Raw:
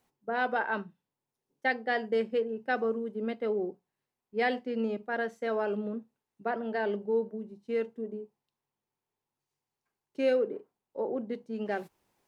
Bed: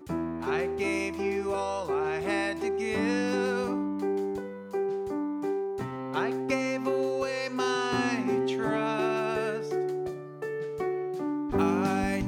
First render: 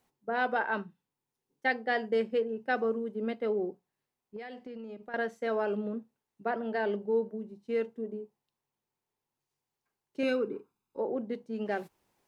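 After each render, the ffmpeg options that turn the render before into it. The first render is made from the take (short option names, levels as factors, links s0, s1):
-filter_complex "[0:a]asettb=1/sr,asplit=3[s0][s1][s2];[s0]atrim=end=0.844[s3];[s1]atrim=start=0.84:end=1.68,asetpts=PTS-STARTPTS,afade=t=in:d=0.004:c=qsin,afade=t=out:st=0.836:d=0.004:c=qsin,bandreject=f=610:w=5.1[s4];[s2]atrim=start=1.676[s5];[s3][s4]acrossfade=d=0.004:c1=hsin:c2=qsin[s6];[s6][s5]acrossfade=d=0.004:c1=qsin:c2=hsin,asettb=1/sr,asplit=3[s7][s8][s9];[s7]atrim=end=4.364[s10];[s8]atrim=start=4.36:end=5.14,asetpts=PTS-STARTPTS,afade=t=in:d=0.004:c=qsin,afade=t=out:st=0.776:d=0.004:c=qsin,acompressor=threshold=0.01:ratio=6:attack=3.2:release=140:knee=1:detection=peak[s11];[s9]atrim=start=5.136[s12];[s10][s11]acrossfade=d=0.004:c1=hsin:c2=qsin[s13];[s13][s12]acrossfade=d=0.004:c1=qsin:c2=hsin,asettb=1/sr,asplit=3[s14][s15][s16];[s14]atrim=end=10.234[s17];[s15]atrim=start=10.23:end=10.99,asetpts=PTS-STARTPTS,afade=t=in:d=0.004:c=qsin,afade=t=out:st=0.756:d=0.004:c=qsin,aecho=1:1:0.8:0.77,atrim=end_sample=33516[s18];[s16]atrim=start=10.986[s19];[s17][s18]acrossfade=d=0.004:c1=hsin:c2=qsin[s20];[s20][s19]acrossfade=d=0.004:c1=qsin:c2=hsin"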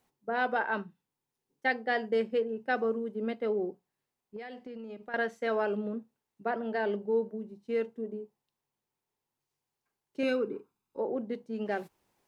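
-filter_complex "[0:a]asettb=1/sr,asplit=3[s0][s1][s2];[s0]atrim=end=4.904[s3];[s1]atrim=start=4.9:end=5.67,asetpts=PTS-STARTPTS,afade=t=in:d=0.004:c=qsin,afade=t=out:st=0.766:d=0.004:c=qsin,equalizer=f=2500:t=o:w=2.7:g=3.5[s4];[s2]atrim=start=5.666[s5];[s3][s4]acrossfade=d=0.004:c1=hsin:c2=qsin[s6];[s6][s5]acrossfade=d=0.004:c1=qsin:c2=hsin"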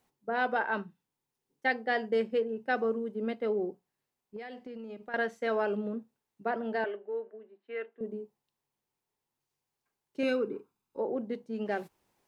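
-filter_complex "[0:a]asettb=1/sr,asplit=3[s0][s1][s2];[s0]atrim=end=6.844[s3];[s1]atrim=start=6.84:end=8.01,asetpts=PTS-STARTPTS,afade=t=in:d=0.004:c=qsin,afade=t=out:st=1.166:d=0.004:c=qsin,highpass=f=390:w=0.5412,highpass=f=390:w=1.3066,equalizer=f=490:t=q:w=4:g=-8,equalizer=f=900:t=q:w=4:g=-8,equalizer=f=1700:t=q:w=4:g=5,lowpass=f=2900:w=0.5412,lowpass=f=2900:w=1.3066[s4];[s2]atrim=start=8.006[s5];[s3][s4]acrossfade=d=0.004:c1=hsin:c2=qsin[s6];[s6][s5]acrossfade=d=0.004:c1=qsin:c2=hsin"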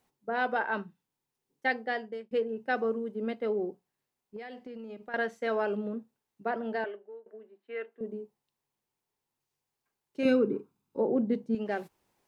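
-filter_complex "[0:a]asettb=1/sr,asplit=3[s0][s1][s2];[s0]atrim=end=10.254[s3];[s1]atrim=start=10.25:end=11.55,asetpts=PTS-STARTPTS,afade=t=in:d=0.004:c=qsin,afade=t=out:st=1.296:d=0.004:c=qsin,equalizer=f=170:w=0.53:g=10.5[s4];[s2]atrim=start=11.546[s5];[s3][s4]acrossfade=d=0.004:c1=hsin:c2=qsin[s6];[s6][s5]acrossfade=d=0.004:c1=qsin:c2=hsin,asplit=3[s7][s8][s9];[s7]atrim=end=2.31,asetpts=PTS-STARTPTS,afade=t=out:st=1.78:d=0.53[s10];[s8]atrim=start=2.31:end=7.26,asetpts=PTS-STARTPTS,afade=t=in:d=0.004:c=hsin,afade=t=out:st=4.41:d=0.54:silence=0.0944061[s11];[s9]atrim=start=7.26,asetpts=PTS-STARTPTS,afade=t=in:d=0.004:c=hsin:silence=0.0944061[s12];[s10][s11][s12]concat=n=3:v=0:a=1"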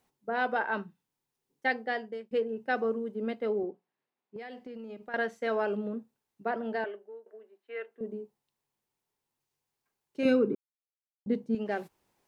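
-filter_complex "[0:a]asettb=1/sr,asplit=3[s0][s1][s2];[s0]atrim=end=3.634[s3];[s1]atrim=start=3.63:end=4.36,asetpts=PTS-STARTPTS,afade=t=in:d=0.004:c=qsin,afade=t=out:st=0.726:d=0.004:c=qsin,highpass=200,lowpass=3000[s4];[s2]atrim=start=4.356[s5];[s3][s4]acrossfade=d=0.004:c1=hsin:c2=qsin[s6];[s6][s5]acrossfade=d=0.004:c1=qsin:c2=hsin,asettb=1/sr,asplit=3[s7][s8][s9];[s7]atrim=end=7.254[s10];[s8]atrim=start=7.25:end=7.91,asetpts=PTS-STARTPTS,afade=t=in:d=0.004:c=qsin,afade=t=out:st=0.656:d=0.004:c=qsin,highpass=370[s11];[s9]atrim=start=7.906[s12];[s10][s11]acrossfade=d=0.004:c1=hsin:c2=qsin[s13];[s13][s12]acrossfade=d=0.004:c1=qsin:c2=hsin,asplit=3[s14][s15][s16];[s14]atrim=end=10.55,asetpts=PTS-STARTPTS,afade=t=out:st=10.546:d=0.004:c=hsin[s17];[s15]atrim=start=10.55:end=11.26,asetpts=PTS-STARTPTS,volume=0[s18];[s16]atrim=start=11.26,asetpts=PTS-STARTPTS,afade=t=in:d=0.004:c=hsin[s19];[s17][s18][s19]concat=n=3:v=0:a=1"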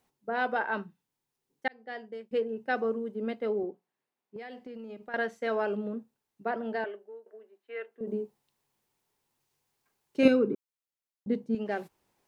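-filter_complex "[0:a]asettb=1/sr,asplit=3[s0][s1][s2];[s0]atrim=end=8.074[s3];[s1]atrim=start=8.07:end=10.28,asetpts=PTS-STARTPTS,afade=t=in:d=0.004:c=qsin,afade=t=out:st=2.206:d=0.004:c=qsin,acontrast=69[s4];[s2]atrim=start=10.276[s5];[s3][s4]acrossfade=d=0.004:c1=hsin:c2=qsin[s6];[s6][s5]acrossfade=d=0.004:c1=qsin:c2=hsin,asplit=2[s7][s8];[s7]atrim=end=1.68,asetpts=PTS-STARTPTS,afade=t=out:st=1.676:d=0.004:c=hsin[s9];[s8]atrim=start=1.68,asetpts=PTS-STARTPTS,afade=t=in:d=0.6[s10];[s9][s10]concat=n=2:v=0:a=1"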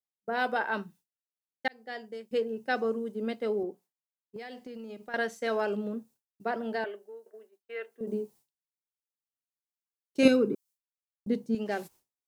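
-af "agate=range=0.0224:threshold=0.00251:ratio=3:detection=peak,bass=f=250:g=1,treble=f=4000:g=13"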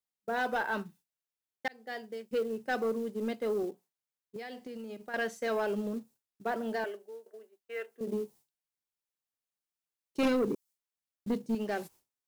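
-filter_complex "[0:a]acrossover=split=5000[s0][s1];[s0]acrusher=bits=6:mode=log:mix=0:aa=0.000001[s2];[s2][s1]amix=inputs=2:normalize=0,asoftclip=type=tanh:threshold=0.0668"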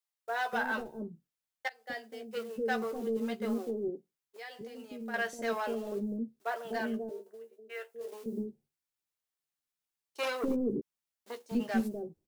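-filter_complex "[0:a]asplit=2[s0][s1];[s1]adelay=13,volume=0.422[s2];[s0][s2]amix=inputs=2:normalize=0,acrossover=split=500[s3][s4];[s3]adelay=250[s5];[s5][s4]amix=inputs=2:normalize=0"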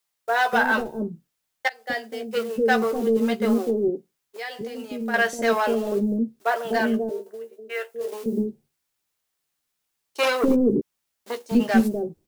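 -af "volume=3.98"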